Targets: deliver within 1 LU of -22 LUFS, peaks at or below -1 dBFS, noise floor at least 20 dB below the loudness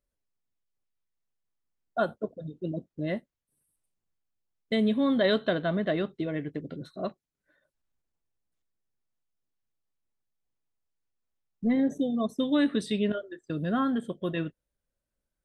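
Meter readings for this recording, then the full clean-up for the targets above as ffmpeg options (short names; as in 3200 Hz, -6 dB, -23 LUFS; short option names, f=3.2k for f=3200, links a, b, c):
loudness -29.5 LUFS; peak -13.5 dBFS; loudness target -22.0 LUFS
-> -af "volume=7.5dB"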